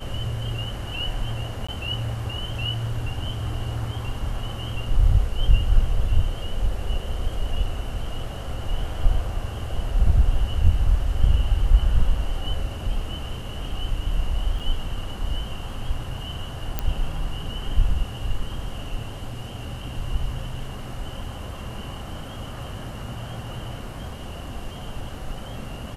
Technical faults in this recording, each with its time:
0:01.67–0:01.69: drop-out 15 ms
0:14.59–0:14.60: drop-out 6.3 ms
0:16.79: click −10 dBFS

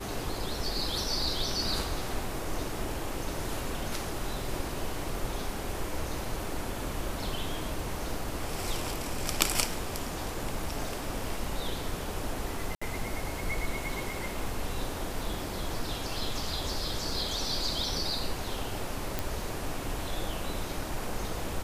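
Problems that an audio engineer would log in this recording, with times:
0:12.75–0:12.81: drop-out 65 ms
0:19.19: click

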